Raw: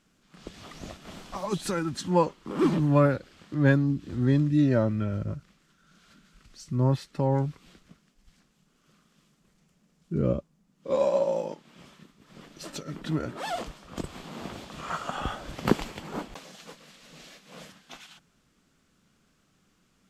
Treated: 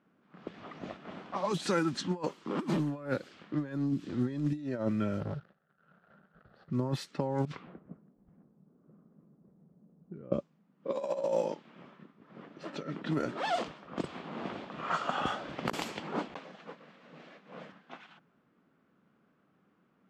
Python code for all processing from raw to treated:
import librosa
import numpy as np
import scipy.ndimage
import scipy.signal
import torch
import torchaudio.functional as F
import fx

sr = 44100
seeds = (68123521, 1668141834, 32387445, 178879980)

y = fx.chain(x, sr, fx.median_filter(points=15),
    fx.fixed_phaser(hz=1500.0, stages=8),
    fx.leveller(passes=2), at=(5.2, 6.7))
y = fx.chain(y, sr, fx.env_lowpass(base_hz=370.0, full_db=-28.0),
    fx.peak_eq(hz=280.0, db=-4.5, octaves=1.7),
    fx.over_compress(threshold_db=-42.0, ratio=-1.0), at=(7.45, 10.32))
y = fx.env_lowpass(y, sr, base_hz=1400.0, full_db=-23.5)
y = scipy.signal.sosfilt(scipy.signal.butter(2, 180.0, 'highpass', fs=sr, output='sos'), y)
y = fx.over_compress(y, sr, threshold_db=-28.0, ratio=-0.5)
y = F.gain(torch.from_numpy(y), -2.0).numpy()